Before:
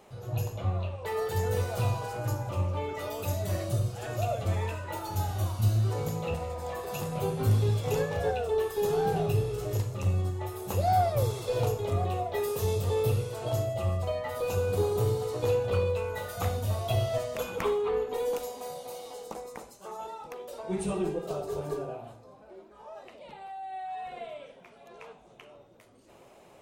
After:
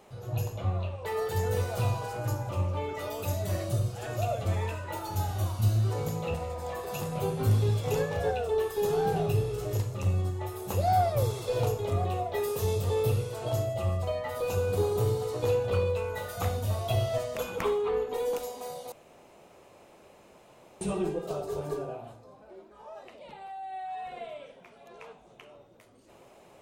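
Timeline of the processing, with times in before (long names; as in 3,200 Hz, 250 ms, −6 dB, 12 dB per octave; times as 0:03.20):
0:18.92–0:20.81: fill with room tone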